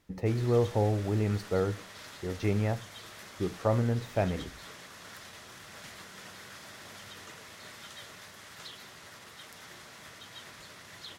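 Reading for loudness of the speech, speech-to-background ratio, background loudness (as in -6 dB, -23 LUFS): -30.5 LUFS, 16.0 dB, -46.5 LUFS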